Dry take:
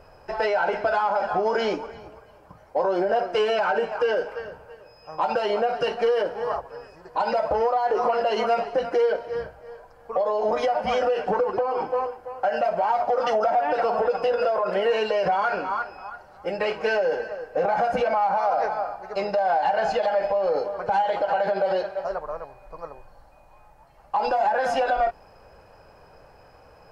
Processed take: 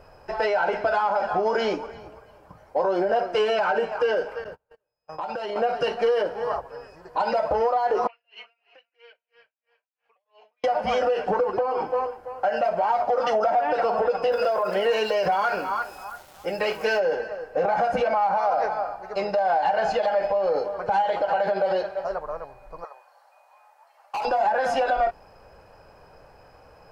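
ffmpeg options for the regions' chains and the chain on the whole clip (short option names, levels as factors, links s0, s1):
-filter_complex "[0:a]asettb=1/sr,asplit=3[s0][s1][s2];[s0]atrim=end=4.444[s3];[s1]atrim=start=4.44:end=5.56,asetpts=PTS-STARTPTS,afade=t=in:d=0.004:c=qsin,afade=t=out:st=1.116:d=0.004:c=qsin,agate=range=0.02:threshold=0.00891:ratio=16:release=100:detection=peak,acompressor=threshold=0.0398:ratio=4:attack=3.2:release=140:knee=1:detection=peak[s4];[s2]atrim=start=5.556[s5];[s3][s4]acrossfade=d=0.004:c1=hsin:c2=qsin[s6];[s6][s5]acrossfade=d=0.004:c1=qsin:c2=hsin,asettb=1/sr,asplit=3[s7][s8][s9];[s7]atrim=end=8.074[s10];[s8]atrim=start=8.07:end=10.64,asetpts=PTS-STARTPTS,afade=t=in:d=0.004:c=qsin,afade=t=out:st=2.566:d=0.004:c=qsin,bandpass=f=2600:t=q:w=5.8,aeval=exprs='val(0)*pow(10,-35*(0.5-0.5*cos(2*PI*3*n/s))/20)':c=same[s11];[s9]atrim=start=10.636[s12];[s10][s11]acrossfade=d=0.004:c1=hsin:c2=qsin[s13];[s13][s12]acrossfade=d=0.004:c1=qsin:c2=hsin,asettb=1/sr,asplit=3[s14][s15][s16];[s14]atrim=end=14.324[s17];[s15]atrim=start=14.32:end=17,asetpts=PTS-STARTPTS,afade=t=in:d=0.004:c=qsin,afade=t=out:st=2.676:d=0.004:c=qsin,aeval=exprs='val(0)*gte(abs(val(0)),0.00355)':c=same,aemphasis=mode=production:type=cd[s18];[s16]atrim=start=16.996[s19];[s17][s18]acrossfade=d=0.004:c1=hsin:c2=qsin[s20];[s20][s19]acrossfade=d=0.004:c1=qsin:c2=hsin,asettb=1/sr,asplit=3[s21][s22][s23];[s21]atrim=end=22.844[s24];[s22]atrim=start=22.84:end=24.25,asetpts=PTS-STARTPTS,afade=t=in:d=0.004:c=qsin,afade=t=out:st=1.406:d=0.004:c=qsin,highpass=f=640:w=0.5412,highpass=f=640:w=1.3066,asoftclip=type=hard:threshold=0.0531[s25];[s23]atrim=start=24.246[s26];[s24][s25]acrossfade=d=0.004:c1=hsin:c2=qsin[s27];[s27][s26]acrossfade=d=0.004:c1=qsin:c2=hsin"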